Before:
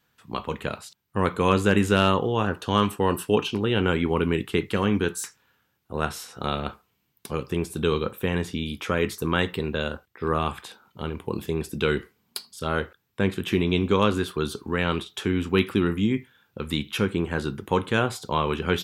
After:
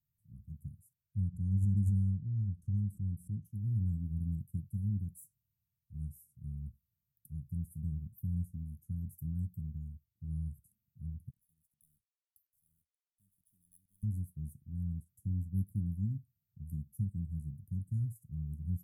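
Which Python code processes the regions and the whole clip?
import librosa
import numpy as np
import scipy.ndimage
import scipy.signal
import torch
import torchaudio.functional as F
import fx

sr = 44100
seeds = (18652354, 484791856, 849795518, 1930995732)

y = fx.chain(x, sr, fx.lowpass(hz=6200.0, slope=12),
    fx.pre_swell(db_per_s=140.0), at=(1.22, 3.45))
y = fx.chain(y, sr, fx.bandpass_q(hz=3600.0, q=5.8),
    fx.leveller(passes=2), at=(11.3, 14.03))
y = scipy.signal.sosfilt(scipy.signal.cheby2(4, 60, [450.0, 4300.0], 'bandstop', fs=sr, output='sos'), y)
y = fx.high_shelf(y, sr, hz=5500.0, db=-5.0)
y = fx.upward_expand(y, sr, threshold_db=-42.0, expansion=1.5)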